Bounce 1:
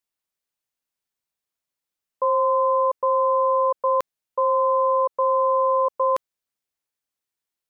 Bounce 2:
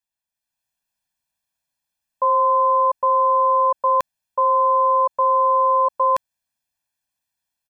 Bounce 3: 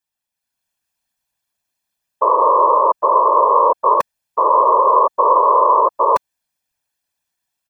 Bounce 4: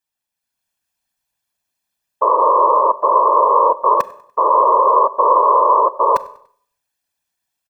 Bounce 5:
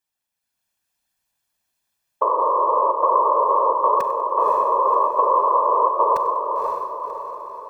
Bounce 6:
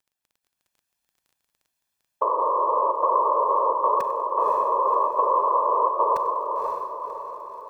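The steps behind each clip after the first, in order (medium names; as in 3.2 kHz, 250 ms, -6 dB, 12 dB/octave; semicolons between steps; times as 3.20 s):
comb 1.2 ms, depth 99%; level rider gain up to 7 dB; trim -5.5 dB
whisper effect; trim +4 dB
feedback delay 97 ms, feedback 44%, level -23 dB; Schroeder reverb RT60 0.57 s, combs from 29 ms, DRR 17 dB
compression, threshold -16 dBFS, peak gain reduction 8 dB; on a send: echo that smears into a reverb 538 ms, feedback 49%, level -4 dB
crackle 17 per s -45 dBFS; trim -3.5 dB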